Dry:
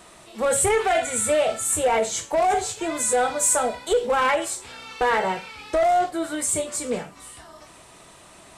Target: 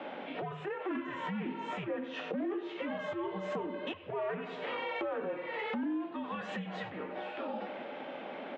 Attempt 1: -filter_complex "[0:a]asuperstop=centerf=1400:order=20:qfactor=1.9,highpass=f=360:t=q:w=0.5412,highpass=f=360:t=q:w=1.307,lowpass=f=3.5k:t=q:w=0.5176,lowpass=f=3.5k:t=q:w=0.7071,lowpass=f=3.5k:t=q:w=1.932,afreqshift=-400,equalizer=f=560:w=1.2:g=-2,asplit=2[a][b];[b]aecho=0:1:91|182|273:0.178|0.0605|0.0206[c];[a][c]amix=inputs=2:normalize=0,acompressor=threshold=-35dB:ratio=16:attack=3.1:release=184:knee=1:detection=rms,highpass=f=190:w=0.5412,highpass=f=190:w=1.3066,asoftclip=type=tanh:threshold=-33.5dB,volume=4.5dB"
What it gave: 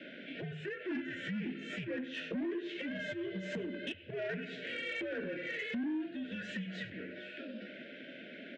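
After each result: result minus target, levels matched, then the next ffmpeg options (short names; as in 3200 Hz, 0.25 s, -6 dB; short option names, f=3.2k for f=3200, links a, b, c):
1000 Hz band -15.0 dB; soft clip: distortion +11 dB; 500 Hz band -3.0 dB
-filter_complex "[0:a]highpass=f=360:t=q:w=0.5412,highpass=f=360:t=q:w=1.307,lowpass=f=3.5k:t=q:w=0.5176,lowpass=f=3.5k:t=q:w=0.7071,lowpass=f=3.5k:t=q:w=1.932,afreqshift=-400,equalizer=f=560:w=1.2:g=-2,asplit=2[a][b];[b]aecho=0:1:91|182|273:0.178|0.0605|0.0206[c];[a][c]amix=inputs=2:normalize=0,acompressor=threshold=-35dB:ratio=16:attack=3.1:release=184:knee=1:detection=rms,highpass=f=190:w=0.5412,highpass=f=190:w=1.3066,asoftclip=type=tanh:threshold=-33.5dB,volume=4.5dB"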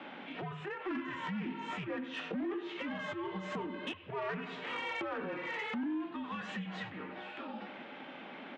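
soft clip: distortion +11 dB; 500 Hz band -3.5 dB
-filter_complex "[0:a]highpass=f=360:t=q:w=0.5412,highpass=f=360:t=q:w=1.307,lowpass=f=3.5k:t=q:w=0.5176,lowpass=f=3.5k:t=q:w=0.7071,lowpass=f=3.5k:t=q:w=1.932,afreqshift=-400,equalizer=f=560:w=1.2:g=-2,asplit=2[a][b];[b]aecho=0:1:91|182|273:0.178|0.0605|0.0206[c];[a][c]amix=inputs=2:normalize=0,acompressor=threshold=-35dB:ratio=16:attack=3.1:release=184:knee=1:detection=rms,highpass=f=190:w=0.5412,highpass=f=190:w=1.3066,asoftclip=type=tanh:threshold=-26.5dB,volume=4.5dB"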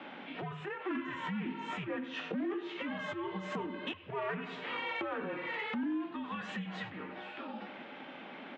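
500 Hz band -3.5 dB
-filter_complex "[0:a]highpass=f=360:t=q:w=0.5412,highpass=f=360:t=q:w=1.307,lowpass=f=3.5k:t=q:w=0.5176,lowpass=f=3.5k:t=q:w=0.7071,lowpass=f=3.5k:t=q:w=1.932,afreqshift=-400,equalizer=f=560:w=1.2:g=8.5,asplit=2[a][b];[b]aecho=0:1:91|182|273:0.178|0.0605|0.0206[c];[a][c]amix=inputs=2:normalize=0,acompressor=threshold=-35dB:ratio=16:attack=3.1:release=184:knee=1:detection=rms,highpass=f=190:w=0.5412,highpass=f=190:w=1.3066,asoftclip=type=tanh:threshold=-26.5dB,volume=4.5dB"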